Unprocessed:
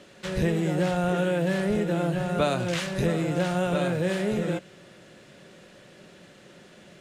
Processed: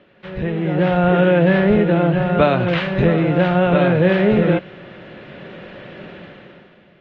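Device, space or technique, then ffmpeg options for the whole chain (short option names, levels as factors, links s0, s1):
action camera in a waterproof case: -af "lowpass=f=3000:w=0.5412,lowpass=f=3000:w=1.3066,dynaudnorm=f=130:g=11:m=6.31,volume=0.891" -ar 48000 -c:a aac -b:a 48k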